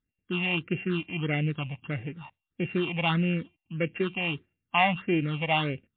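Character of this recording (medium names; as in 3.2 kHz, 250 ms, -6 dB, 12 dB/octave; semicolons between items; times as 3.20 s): a buzz of ramps at a fixed pitch in blocks of 16 samples; phasing stages 6, 1.6 Hz, lowest notch 370–1100 Hz; MP3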